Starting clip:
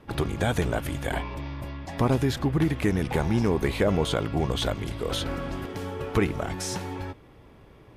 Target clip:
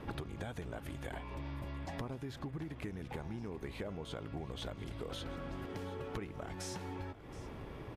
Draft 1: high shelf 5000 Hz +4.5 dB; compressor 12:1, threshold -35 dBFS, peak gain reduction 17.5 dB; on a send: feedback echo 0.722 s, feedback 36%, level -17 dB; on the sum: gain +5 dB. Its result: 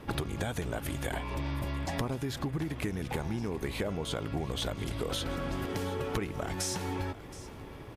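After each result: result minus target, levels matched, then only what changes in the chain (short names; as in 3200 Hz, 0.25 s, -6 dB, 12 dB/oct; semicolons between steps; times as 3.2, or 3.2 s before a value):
compressor: peak gain reduction -8.5 dB; 8000 Hz band +4.0 dB
change: compressor 12:1, threshold -44.5 dBFS, peak gain reduction 26 dB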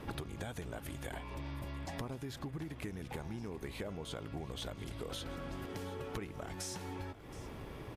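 8000 Hz band +4.0 dB
change: high shelf 5000 Hz -5 dB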